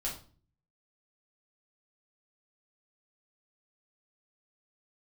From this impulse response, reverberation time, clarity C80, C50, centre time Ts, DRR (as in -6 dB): 0.40 s, 12.5 dB, 7.5 dB, 26 ms, -4.5 dB